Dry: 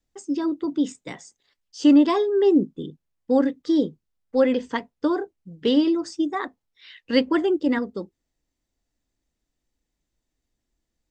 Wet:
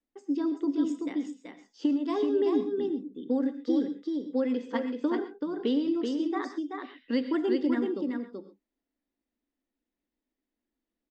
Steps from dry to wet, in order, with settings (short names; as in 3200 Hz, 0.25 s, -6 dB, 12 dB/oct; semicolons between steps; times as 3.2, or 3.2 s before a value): resonant low shelf 180 Hz -10.5 dB, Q 3; low-pass opened by the level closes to 3000 Hz, open at -9.5 dBFS; compressor 10:1, threshold -16 dBFS, peak gain reduction 11.5 dB; echo 0.381 s -4.5 dB; non-linear reverb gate 0.15 s rising, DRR 11 dB; gain -7.5 dB